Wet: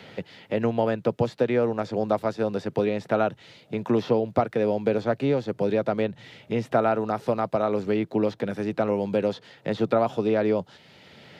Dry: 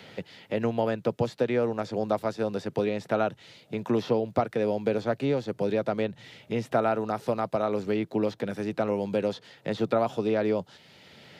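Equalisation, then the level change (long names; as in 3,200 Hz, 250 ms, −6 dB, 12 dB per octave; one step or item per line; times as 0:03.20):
high-shelf EQ 4,700 Hz −6.5 dB
+3.0 dB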